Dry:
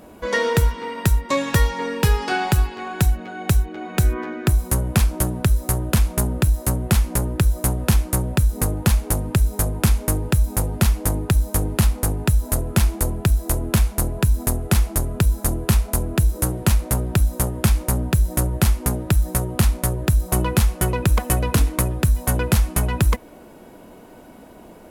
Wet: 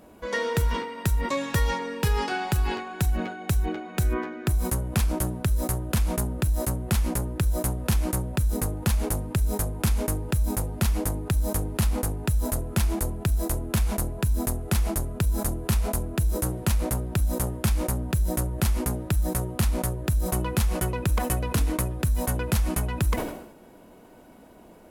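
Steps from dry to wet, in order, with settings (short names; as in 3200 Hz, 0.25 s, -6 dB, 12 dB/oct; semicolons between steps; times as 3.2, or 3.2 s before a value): sustainer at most 70 dB/s; gain -7 dB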